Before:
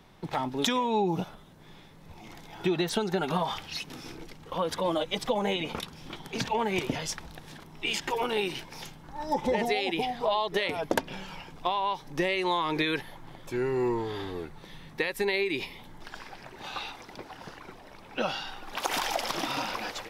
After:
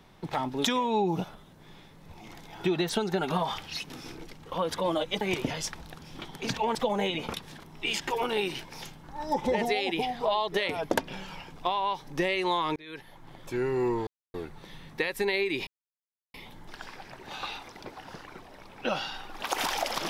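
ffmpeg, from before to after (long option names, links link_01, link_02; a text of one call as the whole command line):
ffmpeg -i in.wav -filter_complex "[0:a]asplit=9[link_01][link_02][link_03][link_04][link_05][link_06][link_07][link_08][link_09];[link_01]atrim=end=5.212[link_10];[link_02]atrim=start=6.658:end=7.422[link_11];[link_03]atrim=start=5.878:end=6.662[link_12];[link_04]atrim=start=5.208:end=5.882[link_13];[link_05]atrim=start=7.418:end=12.76,asetpts=PTS-STARTPTS,afade=type=out:start_time=5.338:duration=0.004:curve=hsin[link_14];[link_06]atrim=start=12.76:end=14.07,asetpts=PTS-STARTPTS,afade=type=in:duration=0.71,afade=type=out:start_time=1.306:duration=0.004:curve=hsin[link_15];[link_07]atrim=start=14.07:end=14.34,asetpts=PTS-STARTPTS,volume=0[link_16];[link_08]atrim=start=14.34:end=15.67,asetpts=PTS-STARTPTS,afade=type=in:duration=0.004:curve=hsin,afade=type=out:start_time=1.326:duration=0.004:curve=hsin,apad=pad_dur=0.67[link_17];[link_09]atrim=start=15.67,asetpts=PTS-STARTPTS,afade=type=in:duration=0.004:curve=hsin[link_18];[link_10][link_11]acrossfade=duration=0.004:curve1=hsin:curve2=hsin[link_19];[link_19][link_12]acrossfade=duration=0.004:curve1=hsin:curve2=hsin[link_20];[link_20][link_13]acrossfade=duration=0.004:curve1=hsin:curve2=hsin[link_21];[link_14][link_15][link_16][link_17][link_18]concat=n=5:v=0:a=1[link_22];[link_21][link_22]acrossfade=duration=0.004:curve1=hsin:curve2=hsin" out.wav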